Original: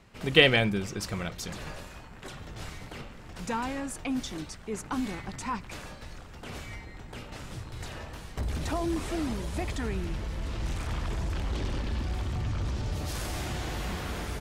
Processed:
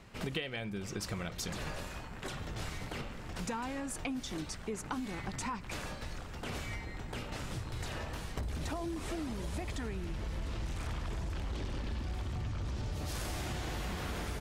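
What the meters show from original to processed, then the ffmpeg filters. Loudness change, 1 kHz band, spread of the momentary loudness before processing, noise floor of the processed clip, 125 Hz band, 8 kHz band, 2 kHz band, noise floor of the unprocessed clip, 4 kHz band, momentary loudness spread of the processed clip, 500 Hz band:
-8.0 dB, -5.0 dB, 13 LU, -45 dBFS, -5.5 dB, -2.5 dB, -10.0 dB, -46 dBFS, -10.5 dB, 4 LU, -9.5 dB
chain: -af "acompressor=threshold=-36dB:ratio=16,volume=2dB"

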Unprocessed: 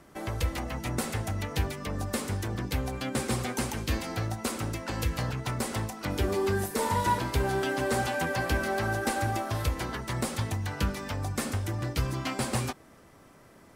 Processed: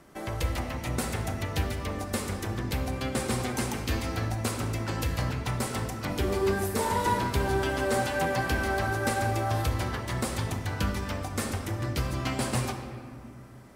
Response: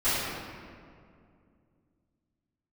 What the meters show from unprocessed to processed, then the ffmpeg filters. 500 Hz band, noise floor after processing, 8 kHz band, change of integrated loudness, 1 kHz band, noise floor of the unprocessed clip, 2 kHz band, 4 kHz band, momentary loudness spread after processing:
+1.5 dB, -44 dBFS, +0.5 dB, +1.0 dB, +1.0 dB, -55 dBFS, +1.0 dB, +0.5 dB, 6 LU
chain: -filter_complex "[0:a]bandreject=f=50:t=h:w=6,bandreject=f=100:t=h:w=6,asplit=2[a][b];[1:a]atrim=start_sample=2205,adelay=29[c];[b][c]afir=irnorm=-1:irlink=0,volume=-20dB[d];[a][d]amix=inputs=2:normalize=0"

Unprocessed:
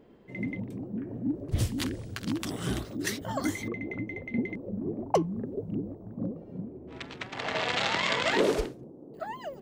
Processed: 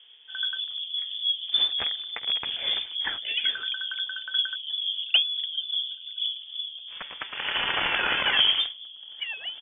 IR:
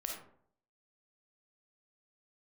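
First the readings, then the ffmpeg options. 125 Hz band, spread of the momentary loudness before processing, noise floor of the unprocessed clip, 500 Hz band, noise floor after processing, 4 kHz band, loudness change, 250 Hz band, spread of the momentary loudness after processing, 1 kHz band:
under -15 dB, 14 LU, -48 dBFS, -12.0 dB, -45 dBFS, +15.5 dB, +6.0 dB, under -15 dB, 12 LU, -1.5 dB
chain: -filter_complex "[0:a]lowpass=f=3.1k:t=q:w=0.5098,lowpass=f=3.1k:t=q:w=0.6013,lowpass=f=3.1k:t=q:w=0.9,lowpass=f=3.1k:t=q:w=2.563,afreqshift=-3600,asplit=2[a][b];[b]adelay=1633,volume=-27dB,highshelf=f=4k:g=-36.7[c];[a][c]amix=inputs=2:normalize=0,volume=3.5dB"

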